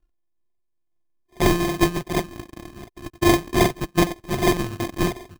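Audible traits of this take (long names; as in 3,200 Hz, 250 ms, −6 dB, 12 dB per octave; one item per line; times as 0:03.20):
a buzz of ramps at a fixed pitch in blocks of 128 samples
phaser sweep stages 8, 1.3 Hz, lowest notch 480–1,000 Hz
aliases and images of a low sample rate 1,400 Hz, jitter 0%
amplitude modulation by smooth noise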